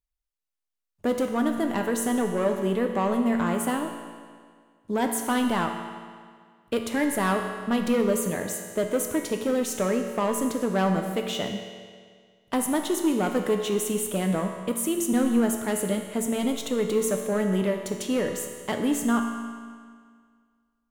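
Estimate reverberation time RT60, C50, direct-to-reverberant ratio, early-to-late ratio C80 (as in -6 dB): 1.9 s, 5.0 dB, 3.0 dB, 6.0 dB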